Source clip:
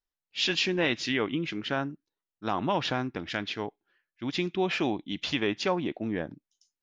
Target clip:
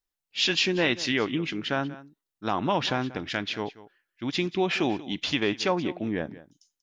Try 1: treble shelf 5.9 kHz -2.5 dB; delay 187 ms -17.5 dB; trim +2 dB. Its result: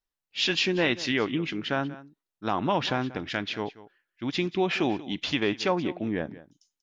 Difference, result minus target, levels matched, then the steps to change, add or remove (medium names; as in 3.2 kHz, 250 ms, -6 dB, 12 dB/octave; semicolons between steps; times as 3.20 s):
8 kHz band -3.0 dB
change: treble shelf 5.9 kHz +4 dB